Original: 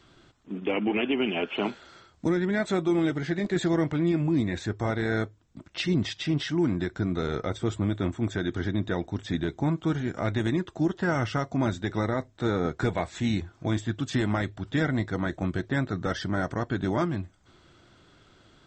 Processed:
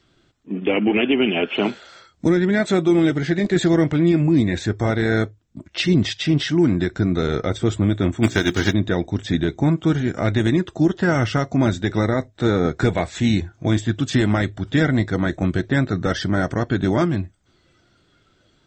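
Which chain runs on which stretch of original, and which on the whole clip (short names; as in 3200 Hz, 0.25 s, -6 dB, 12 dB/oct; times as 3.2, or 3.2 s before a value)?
8.22–8.72 spectral whitening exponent 0.6 + notches 60/120/180/240/300/360/420 Hz + transient shaper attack +8 dB, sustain -3 dB
whole clip: spectral noise reduction 11 dB; bell 1000 Hz -5 dB 0.88 oct; gain +8.5 dB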